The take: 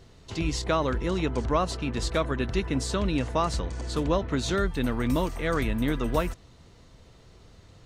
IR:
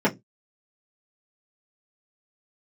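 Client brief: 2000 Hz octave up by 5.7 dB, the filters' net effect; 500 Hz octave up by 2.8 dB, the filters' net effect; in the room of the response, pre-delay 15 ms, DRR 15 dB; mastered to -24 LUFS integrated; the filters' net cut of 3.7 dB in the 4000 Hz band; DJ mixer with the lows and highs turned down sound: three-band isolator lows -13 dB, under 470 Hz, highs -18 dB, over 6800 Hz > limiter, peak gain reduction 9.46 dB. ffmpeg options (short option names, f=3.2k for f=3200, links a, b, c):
-filter_complex "[0:a]equalizer=f=500:t=o:g=7.5,equalizer=f=2k:t=o:g=8.5,equalizer=f=4k:t=o:g=-6.5,asplit=2[a][b];[1:a]atrim=start_sample=2205,adelay=15[c];[b][c]afir=irnorm=-1:irlink=0,volume=-31dB[d];[a][d]amix=inputs=2:normalize=0,acrossover=split=470 6800:gain=0.224 1 0.126[e][f][g];[e][f][g]amix=inputs=3:normalize=0,volume=7dB,alimiter=limit=-13dB:level=0:latency=1"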